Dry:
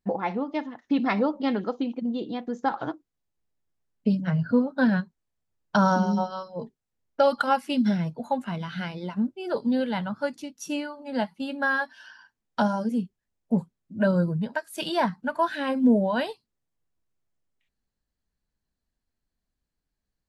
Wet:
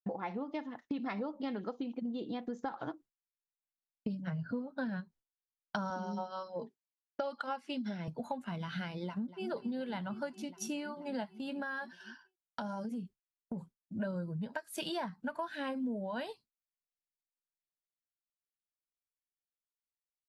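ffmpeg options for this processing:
-filter_complex "[0:a]asettb=1/sr,asplit=3[a][b][c];[a]atrim=end=5.904[d];[b]atrim=start=5.9:end=8.08,asetpts=PTS-STARTPTS,afade=t=in:d=0.004:c=qsin,afade=t=out:st=2.176:d=0.004:c=qsin,highpass=240,lowpass=6.6k[e];[c]atrim=start=8.076[f];[d][e]acrossfade=d=0.004:c1=hsin:c2=qsin[g];[g][f]acrossfade=d=0.004:c1=qsin:c2=hsin,asplit=2[h][i];[i]afade=t=in:st=9.04:d=0.01,afade=t=out:st=9.47:d=0.01,aecho=0:1:240|480|720|960|1200|1440|1680|1920|2160|2400|2640|2880:0.237137|0.201567|0.171332|0.145632|0.123787|0.105219|0.0894362|0.0760208|0.0646177|0.054925|0.0466863|0.0396833[j];[h][j]amix=inputs=2:normalize=0,asettb=1/sr,asplit=3[k][l][m];[k]atrim=end=11.394[n];[l]atrim=start=11.39:end=13.99,asetpts=PTS-STARTPTS,afade=t=in:d=0.004:c=qsin,afade=t=out:st=2.596:d=0.004:c=qsin,acompressor=threshold=-32dB:ratio=6:attack=3.2:release=140:knee=1:detection=peak[o];[m]atrim=start=13.986[p];[n][o]acrossfade=d=0.004:c1=hsin:c2=qsin[q];[q][p]acrossfade=d=0.004:c1=qsin:c2=hsin,agate=range=-33dB:threshold=-43dB:ratio=3:detection=peak,acompressor=threshold=-34dB:ratio=6,volume=-1.5dB"

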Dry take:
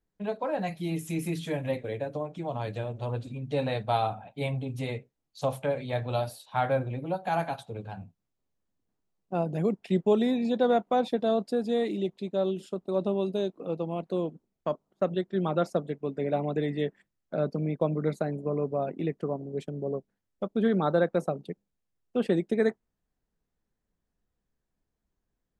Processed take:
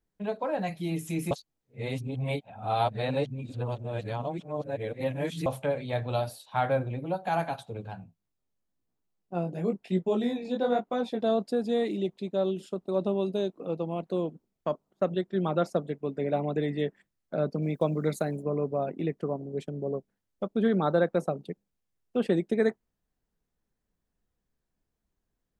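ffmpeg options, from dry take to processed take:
-filter_complex "[0:a]asplit=3[a][b][c];[a]afade=t=out:st=7.95:d=0.02[d];[b]flanger=delay=16.5:depth=7.4:speed=1,afade=t=in:st=7.95:d=0.02,afade=t=out:st=11.2:d=0.02[e];[c]afade=t=in:st=11.2:d=0.02[f];[d][e][f]amix=inputs=3:normalize=0,asettb=1/sr,asplit=3[g][h][i];[g]atrim=end=17.624[j];[h]atrim=start=17.62:end=18.43,asetpts=PTS-STARTPTS,afade=t=in:d=0.004:c=qsin,afade=t=out:st=0.806:d=0.004:c=qsin,aemphasis=mode=production:type=75kf[k];[i]atrim=start=18.426[l];[j][k]acrossfade=d=0.004:c1=hsin:c2=qsin[m];[m][l]acrossfade=d=0.004:c1=qsin:c2=hsin,asplit=3[n][o][p];[n]atrim=end=1.312[q];[o]atrim=start=1.308:end=5.462,asetpts=PTS-STARTPTS,areverse[r];[p]atrim=start=5.458[s];[q][r]acrossfade=d=0.004:c1=hsin:c2=hsin[t];[t][s]acrossfade=d=0.004:c1=hsin:c2=hsin"

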